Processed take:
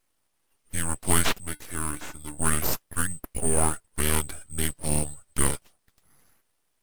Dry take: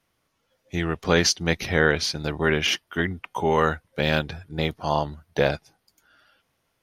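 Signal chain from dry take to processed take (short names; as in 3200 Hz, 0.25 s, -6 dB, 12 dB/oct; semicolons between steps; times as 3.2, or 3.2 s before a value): band-swap scrambler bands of 4000 Hz; full-wave rectifier; 1.4–2.38 resonator 300 Hz, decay 0.16 s, harmonics odd, mix 70%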